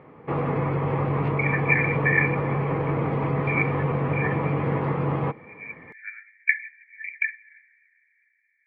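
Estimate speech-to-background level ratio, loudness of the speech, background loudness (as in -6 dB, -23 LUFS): -1.5 dB, -27.0 LUFS, -25.5 LUFS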